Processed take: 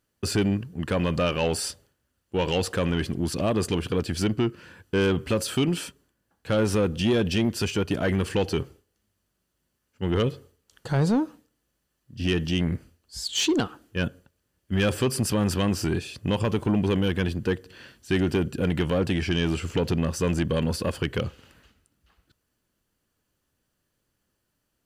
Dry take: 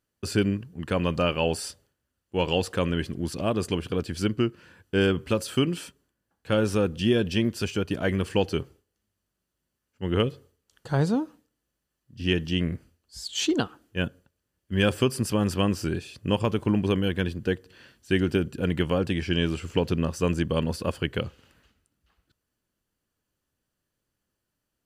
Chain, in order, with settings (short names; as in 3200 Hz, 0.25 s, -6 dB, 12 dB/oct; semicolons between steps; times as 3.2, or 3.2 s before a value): in parallel at +2 dB: limiter -19 dBFS, peak gain reduction 10 dB; on the sum: soft clip -13.5 dBFS, distortion -16 dB; gain -2 dB